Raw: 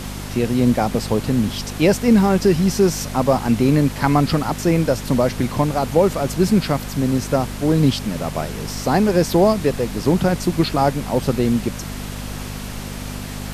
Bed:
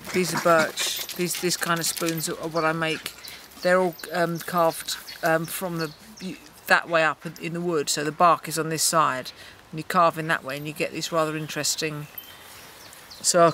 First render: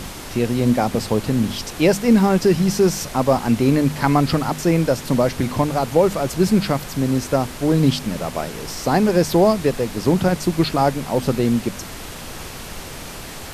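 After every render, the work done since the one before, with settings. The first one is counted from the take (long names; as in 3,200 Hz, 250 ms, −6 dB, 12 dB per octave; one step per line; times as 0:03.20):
hum removal 50 Hz, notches 5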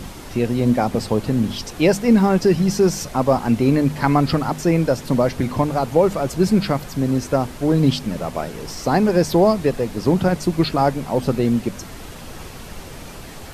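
broadband denoise 6 dB, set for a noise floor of −34 dBFS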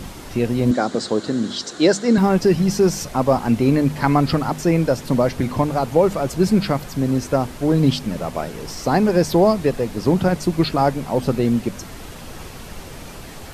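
0:00.71–0:02.18: loudspeaker in its box 220–8,400 Hz, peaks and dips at 330 Hz +4 dB, 880 Hz −5 dB, 1,500 Hz +6 dB, 2,500 Hz −9 dB, 4,000 Hz +9 dB, 7,200 Hz +7 dB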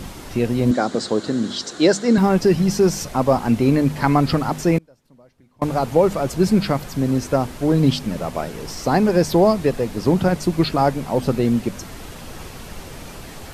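0:04.78–0:05.62: gate with flip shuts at −24 dBFS, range −33 dB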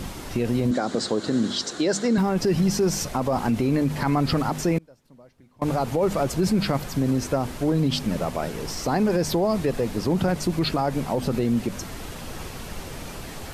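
brickwall limiter −14 dBFS, peak gain reduction 11 dB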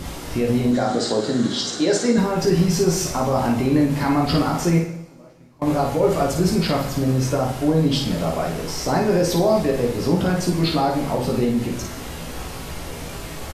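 on a send: ambience of single reflections 17 ms −4.5 dB, 54 ms −4.5 dB
on the sum: coupled-rooms reverb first 0.73 s, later 2.2 s, from −19 dB, DRR 4 dB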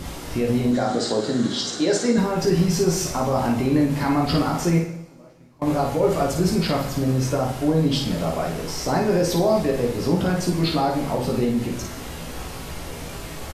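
level −1.5 dB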